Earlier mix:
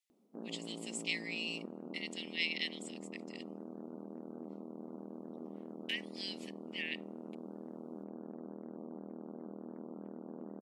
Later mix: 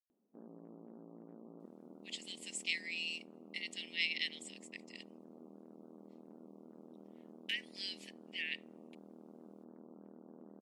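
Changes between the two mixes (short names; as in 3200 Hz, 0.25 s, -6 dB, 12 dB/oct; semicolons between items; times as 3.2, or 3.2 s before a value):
speech: entry +1.60 s; background -9.0 dB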